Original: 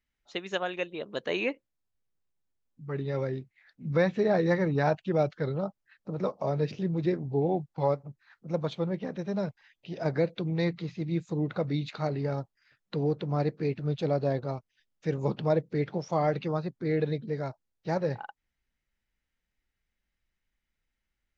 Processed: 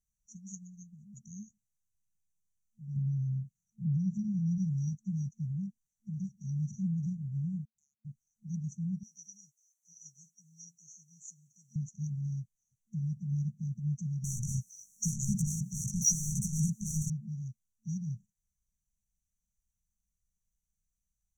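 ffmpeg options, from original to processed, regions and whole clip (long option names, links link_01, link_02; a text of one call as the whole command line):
ffmpeg -i in.wav -filter_complex "[0:a]asettb=1/sr,asplit=3[link_01][link_02][link_03];[link_01]atrim=end=2.964[link_04];[link_02]atrim=start=2.96:end=4.58,asetpts=PTS-STARTPTS,afade=type=in:duration=0.004:curve=qsin,afade=type=out:start_time=1.616:duration=0.004:curve=qsin,equalizer=frequency=150:width_type=o:width=1.3:gain=13,acompressor=threshold=-30dB:ratio=2.5:attack=3.2:release=140:knee=1:detection=peak[link_05];[link_03]atrim=start=4.576[link_06];[link_04][link_05]acrossfade=duration=0.004:curve1=hsin:curve2=qsin[link_07];[link_07][link_06]acrossfade=duration=0.004:curve1=qsin:curve2=hsin,asettb=1/sr,asplit=3[link_08][link_09][link_10];[link_08]atrim=end=7.654[link_11];[link_09]atrim=start=7.65:end=8.05,asetpts=PTS-STARTPTS,afade=type=in:duration=0.004:curve=qsin,afade=type=out:start_time=0.396:duration=0.004:curve=qsin,lowpass=frequency=2300:width_type=q:width=0.5098,lowpass=frequency=2300:width_type=q:width=0.6013,lowpass=frequency=2300:width_type=q:width=0.9,lowpass=frequency=2300:width_type=q:width=2.563,afreqshift=-2700,acompressor=threshold=-34dB:ratio=6:attack=3.2:release=140:knee=1:detection=peak[link_12];[link_10]atrim=start=8.046[link_13];[link_11][link_12]acrossfade=duration=0.004:curve1=hsin:curve2=qsin[link_14];[link_14][link_13]acrossfade=duration=0.004:curve1=qsin:curve2=hsin,asettb=1/sr,asplit=3[link_15][link_16][link_17];[link_15]atrim=end=9.034[link_18];[link_16]atrim=start=9.03:end=11.76,asetpts=PTS-STARTPTS,afade=type=in:duration=0.004:curve=qsin,afade=type=out:start_time=2.726:duration=0.004:curve=qsin,highpass=1500,aecho=1:1:7.4:0.47,atrim=end_sample=120393,acontrast=78[link_19];[link_17]atrim=start=11.756[link_20];[link_18][link_19]acrossfade=duration=0.004:curve1=hsin:curve2=qsin[link_21];[link_21][link_20]acrossfade=duration=0.004:curve1=qsin:curve2=hsin,asettb=1/sr,asplit=3[link_22][link_23][link_24];[link_22]atrim=end=14.244[link_25];[link_23]atrim=start=14.24:end=17.1,asetpts=PTS-STARTPTS,afade=type=in:duration=0.004:curve=qsin,afade=type=out:start_time=2.856:duration=0.004:curve=qsin,highshelf=frequency=2300:gain=7.5,flanger=delay=15:depth=3.9:speed=2.7,asplit=2[link_26][link_27];[link_27]highpass=frequency=720:poles=1,volume=40dB,asoftclip=type=tanh:threshold=-15.5dB[link_28];[link_26][link_28]amix=inputs=2:normalize=0,lowpass=frequency=2900:poles=1,volume=-6dB[link_29];[link_24]atrim=start=17.096[link_30];[link_25][link_29]acrossfade=duration=0.004:curve1=hsin:curve2=qsin[link_31];[link_31][link_30]acrossfade=duration=0.004:curve1=qsin:curve2=hsin,afftfilt=real='re*(1-between(b*sr/4096,220,5700))':imag='im*(1-between(b*sr/4096,220,5700))':win_size=4096:overlap=0.75,equalizer=frequency=3800:width=0.5:gain=13,volume=-1.5dB" out.wav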